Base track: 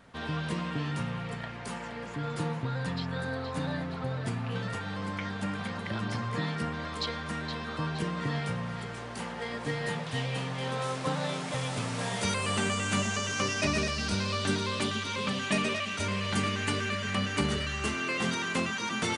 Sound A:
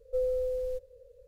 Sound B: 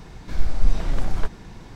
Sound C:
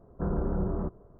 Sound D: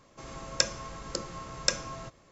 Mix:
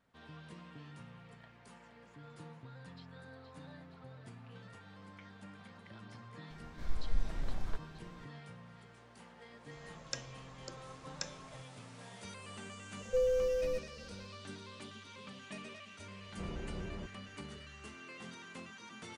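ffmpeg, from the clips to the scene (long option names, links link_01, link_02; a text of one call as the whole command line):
ffmpeg -i bed.wav -i cue0.wav -i cue1.wav -i cue2.wav -i cue3.wav -filter_complex "[0:a]volume=-19dB[link_01];[2:a]atrim=end=1.75,asetpts=PTS-STARTPTS,volume=-14.5dB,afade=type=in:duration=0.004:curve=hsin,afade=type=out:start_time=1.746:duration=0.004:curve=hsin,adelay=286650S[link_02];[4:a]atrim=end=2.31,asetpts=PTS-STARTPTS,volume=-15dB,afade=type=in:duration=0.004:curve=hsin,afade=type=out:start_time=2.306:duration=0.004:curve=hsin,adelay=9530[link_03];[1:a]atrim=end=1.27,asetpts=PTS-STARTPTS,volume=-1dB,afade=type=in:duration=0.004:curve=hsin,afade=type=out:start_time=1.266:duration=0.004:curve=hsin,adelay=573300S[link_04];[3:a]atrim=end=1.19,asetpts=PTS-STARTPTS,volume=-13.5dB,afade=type=in:duration=0.004:curve=hsin,afade=type=out:start_time=1.186:duration=0.004:curve=hsin,adelay=16180[link_05];[link_01][link_02][link_03][link_04][link_05]amix=inputs=5:normalize=0" out.wav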